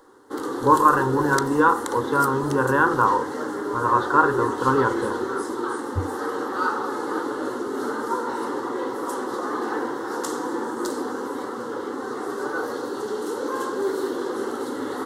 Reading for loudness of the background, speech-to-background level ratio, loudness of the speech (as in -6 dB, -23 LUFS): -28.0 LUFS, 7.0 dB, -21.0 LUFS